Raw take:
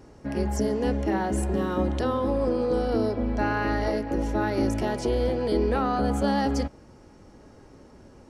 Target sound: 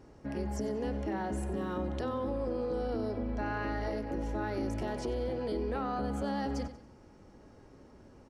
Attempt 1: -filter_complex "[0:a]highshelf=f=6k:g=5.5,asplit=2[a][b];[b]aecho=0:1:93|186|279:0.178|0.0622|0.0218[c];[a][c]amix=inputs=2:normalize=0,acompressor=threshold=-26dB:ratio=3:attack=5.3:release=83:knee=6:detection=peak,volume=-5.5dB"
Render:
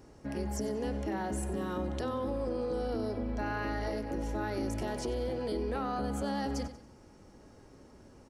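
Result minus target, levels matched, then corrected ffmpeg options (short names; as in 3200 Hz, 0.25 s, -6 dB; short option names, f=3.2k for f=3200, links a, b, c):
8000 Hz band +6.5 dB
-filter_complex "[0:a]highshelf=f=6k:g=-5.5,asplit=2[a][b];[b]aecho=0:1:93|186|279:0.178|0.0622|0.0218[c];[a][c]amix=inputs=2:normalize=0,acompressor=threshold=-26dB:ratio=3:attack=5.3:release=83:knee=6:detection=peak,volume=-5.5dB"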